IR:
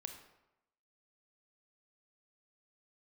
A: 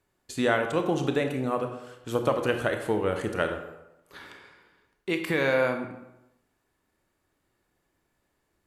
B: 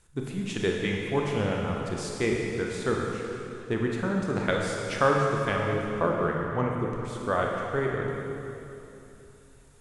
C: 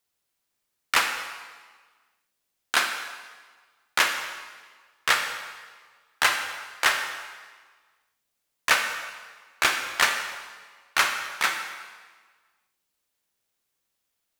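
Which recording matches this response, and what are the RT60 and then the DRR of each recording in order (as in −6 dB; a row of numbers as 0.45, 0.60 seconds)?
A; 0.90, 2.9, 1.5 seconds; 5.5, −1.0, 5.0 decibels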